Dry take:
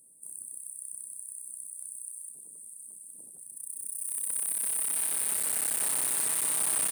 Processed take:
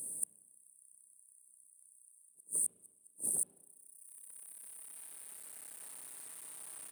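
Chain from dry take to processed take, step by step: inverted gate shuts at -34 dBFS, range -36 dB; hum notches 60/120/180/240 Hz; spring tank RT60 1.1 s, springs 33/50 ms, DRR 11 dB; trim +15 dB

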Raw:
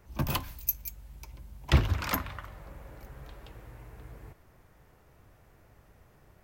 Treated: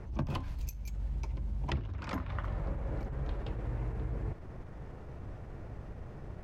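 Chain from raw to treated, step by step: tilt shelf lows +5.5 dB, about 780 Hz; compression 10:1, threshold -41 dBFS, peak gain reduction 29.5 dB; distance through air 79 m; attacks held to a fixed rise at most 100 dB/s; trim +11 dB

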